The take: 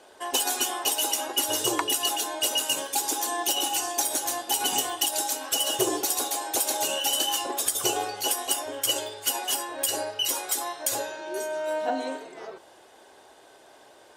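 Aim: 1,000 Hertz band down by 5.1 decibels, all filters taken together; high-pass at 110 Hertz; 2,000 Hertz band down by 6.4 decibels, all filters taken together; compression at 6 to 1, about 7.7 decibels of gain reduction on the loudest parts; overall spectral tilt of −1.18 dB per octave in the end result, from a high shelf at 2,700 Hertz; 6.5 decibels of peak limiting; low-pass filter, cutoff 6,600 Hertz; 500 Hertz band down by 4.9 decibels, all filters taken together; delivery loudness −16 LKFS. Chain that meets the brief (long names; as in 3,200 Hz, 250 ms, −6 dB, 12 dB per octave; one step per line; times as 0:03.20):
high-pass filter 110 Hz
low-pass filter 6,600 Hz
parametric band 500 Hz −5 dB
parametric band 1,000 Hz −3 dB
parametric band 2,000 Hz −3.5 dB
high-shelf EQ 2,700 Hz −8.5 dB
downward compressor 6 to 1, threshold −34 dBFS
level +23 dB
brickwall limiter −6 dBFS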